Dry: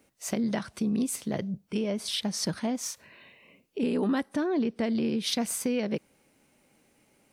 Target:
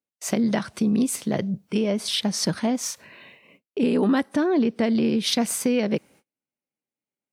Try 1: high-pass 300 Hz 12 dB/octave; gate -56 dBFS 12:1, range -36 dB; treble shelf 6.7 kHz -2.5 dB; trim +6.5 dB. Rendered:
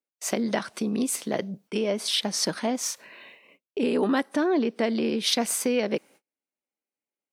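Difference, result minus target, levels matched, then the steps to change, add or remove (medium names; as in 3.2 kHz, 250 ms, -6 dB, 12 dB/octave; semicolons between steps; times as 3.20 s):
125 Hz band -5.5 dB
change: high-pass 89 Hz 12 dB/octave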